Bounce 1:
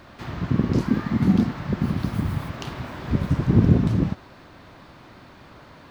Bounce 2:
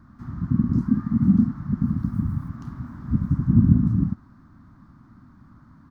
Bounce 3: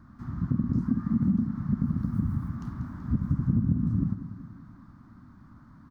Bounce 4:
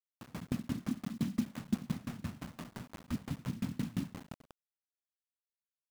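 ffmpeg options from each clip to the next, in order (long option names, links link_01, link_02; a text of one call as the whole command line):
ffmpeg -i in.wav -af "firequalizer=gain_entry='entry(160,0);entry(240,3);entry(440,-26);entry(1200,-6);entry(2600,-30);entry(5500,-17)':delay=0.05:min_phase=1" out.wav
ffmpeg -i in.wav -filter_complex "[0:a]acompressor=threshold=-20dB:ratio=6,asplit=2[link_01][link_02];[link_02]aecho=0:1:190|380|570|760|950:0.237|0.126|0.0666|0.0353|0.0187[link_03];[link_01][link_03]amix=inputs=2:normalize=0,volume=-1.5dB" out.wav
ffmpeg -i in.wav -af "bandpass=frequency=460:width_type=q:width=0.75:csg=0,acrusher=bits=6:mix=0:aa=0.000001,aeval=exprs='val(0)*pow(10,-27*if(lt(mod(5.8*n/s,1),2*abs(5.8)/1000),1-mod(5.8*n/s,1)/(2*abs(5.8)/1000),(mod(5.8*n/s,1)-2*abs(5.8)/1000)/(1-2*abs(5.8)/1000))/20)':channel_layout=same,volume=2dB" out.wav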